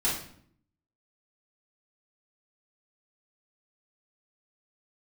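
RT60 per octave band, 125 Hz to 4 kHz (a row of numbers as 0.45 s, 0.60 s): 0.90 s, 0.90 s, 0.65 s, 0.55 s, 0.55 s, 0.50 s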